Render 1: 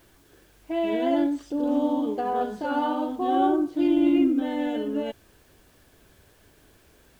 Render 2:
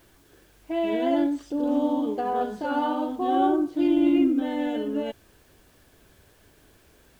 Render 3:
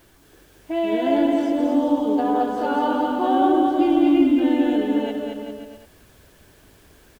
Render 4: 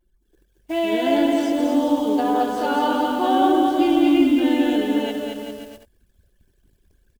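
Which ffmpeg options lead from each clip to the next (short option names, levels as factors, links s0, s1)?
-af anull
-af "aecho=1:1:220|396|536.8|649.4|739.6:0.631|0.398|0.251|0.158|0.1,volume=1.41"
-af "highshelf=f=2400:g=10.5,anlmdn=0.158"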